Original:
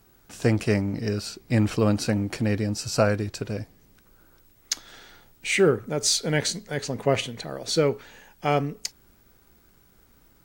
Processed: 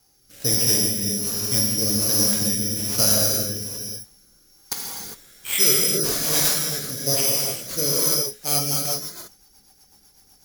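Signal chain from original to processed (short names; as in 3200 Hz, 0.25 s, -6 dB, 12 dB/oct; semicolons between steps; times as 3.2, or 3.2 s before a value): careless resampling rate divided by 8×, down none, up zero stuff; non-linear reverb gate 0.43 s flat, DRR -4.5 dB; rotary speaker horn 1.2 Hz, later 8 Hz, at 8.15; gain -8.5 dB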